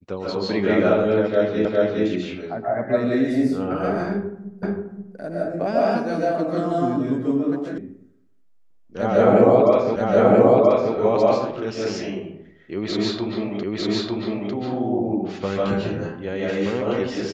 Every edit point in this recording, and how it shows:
1.65 s: repeat of the last 0.41 s
4.63 s: repeat of the last 0.53 s
7.78 s: sound stops dead
9.96 s: repeat of the last 0.98 s
13.63 s: repeat of the last 0.9 s

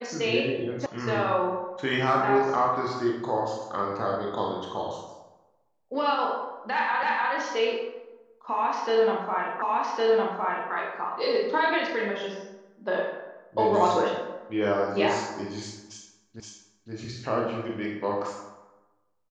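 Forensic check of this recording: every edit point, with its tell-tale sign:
0.86 s: sound stops dead
7.03 s: repeat of the last 0.3 s
9.62 s: repeat of the last 1.11 s
16.40 s: repeat of the last 0.52 s

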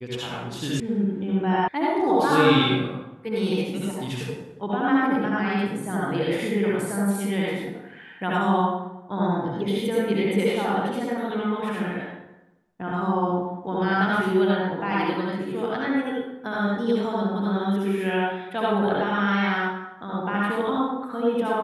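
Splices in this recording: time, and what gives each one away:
0.80 s: sound stops dead
1.68 s: sound stops dead

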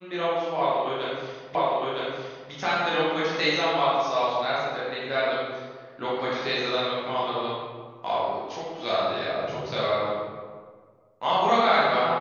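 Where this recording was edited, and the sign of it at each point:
1.55 s: repeat of the last 0.96 s

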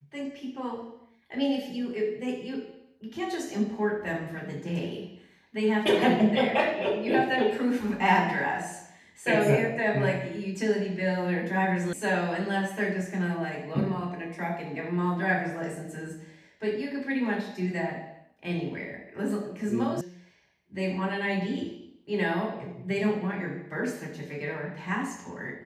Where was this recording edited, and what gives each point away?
11.93 s: sound stops dead
20.01 s: sound stops dead

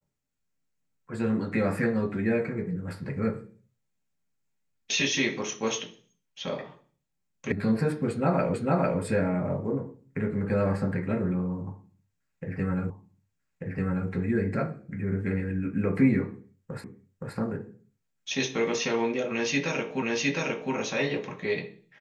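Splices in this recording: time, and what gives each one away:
7.52 s: sound stops dead
8.54 s: repeat of the last 0.45 s
12.90 s: repeat of the last 1.19 s
16.84 s: repeat of the last 0.52 s
20.02 s: repeat of the last 0.71 s

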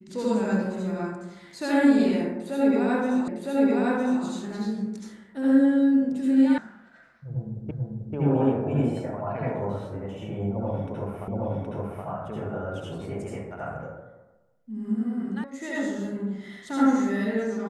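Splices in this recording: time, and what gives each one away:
3.28 s: repeat of the last 0.96 s
6.58 s: sound stops dead
7.71 s: repeat of the last 0.44 s
11.28 s: repeat of the last 0.77 s
15.44 s: sound stops dead

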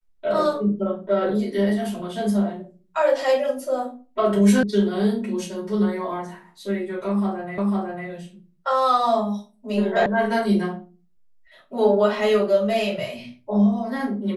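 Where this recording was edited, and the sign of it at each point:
4.63 s: sound stops dead
7.58 s: repeat of the last 0.5 s
10.06 s: sound stops dead

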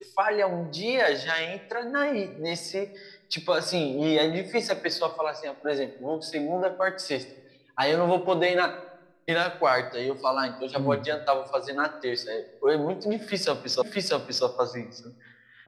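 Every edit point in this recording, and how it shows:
13.82 s: repeat of the last 0.64 s

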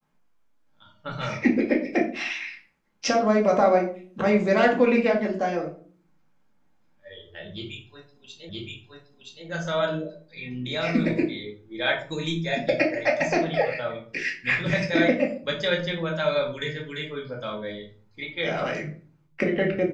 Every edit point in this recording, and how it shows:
8.49 s: repeat of the last 0.97 s

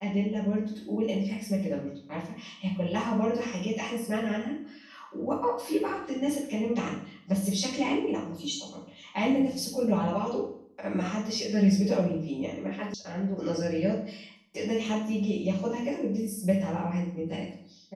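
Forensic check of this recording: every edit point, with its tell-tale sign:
12.94 s: sound stops dead

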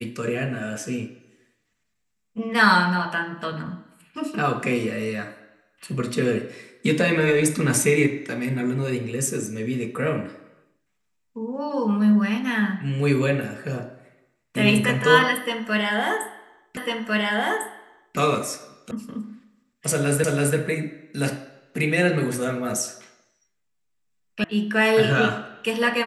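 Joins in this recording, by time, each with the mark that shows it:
16.77 s: repeat of the last 1.4 s
18.91 s: sound stops dead
20.24 s: repeat of the last 0.33 s
24.44 s: sound stops dead

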